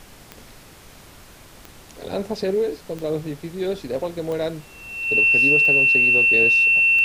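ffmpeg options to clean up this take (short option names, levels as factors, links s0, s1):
-af "adeclick=t=4,bandreject=f=2700:w=30,afftdn=nr=20:nf=-46"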